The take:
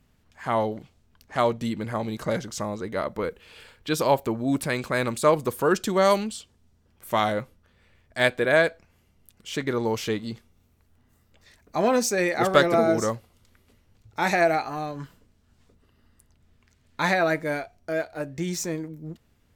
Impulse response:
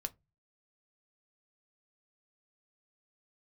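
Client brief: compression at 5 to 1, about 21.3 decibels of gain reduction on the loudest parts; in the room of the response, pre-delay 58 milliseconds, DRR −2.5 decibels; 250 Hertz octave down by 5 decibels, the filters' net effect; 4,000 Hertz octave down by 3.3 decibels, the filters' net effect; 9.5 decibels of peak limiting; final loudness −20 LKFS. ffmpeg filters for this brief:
-filter_complex "[0:a]equalizer=frequency=250:width_type=o:gain=-7,equalizer=frequency=4000:width_type=o:gain=-4,acompressor=threshold=-39dB:ratio=5,alimiter=level_in=8.5dB:limit=-24dB:level=0:latency=1,volume=-8.5dB,asplit=2[link_01][link_02];[1:a]atrim=start_sample=2205,adelay=58[link_03];[link_02][link_03]afir=irnorm=-1:irlink=0,volume=4dB[link_04];[link_01][link_04]amix=inputs=2:normalize=0,volume=19dB"

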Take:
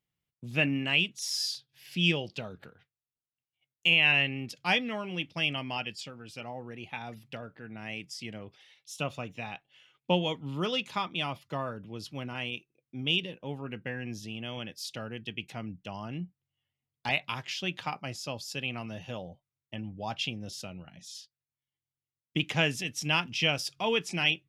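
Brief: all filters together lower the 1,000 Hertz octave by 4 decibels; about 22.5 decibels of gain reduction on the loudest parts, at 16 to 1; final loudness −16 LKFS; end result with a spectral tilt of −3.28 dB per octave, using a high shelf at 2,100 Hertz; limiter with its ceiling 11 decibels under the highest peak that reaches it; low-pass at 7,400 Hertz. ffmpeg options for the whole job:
ffmpeg -i in.wav -af "lowpass=7400,equalizer=frequency=1000:width_type=o:gain=-7.5,highshelf=frequency=2100:gain=9,acompressor=threshold=-37dB:ratio=16,volume=27.5dB,alimiter=limit=-4.5dB:level=0:latency=1" out.wav

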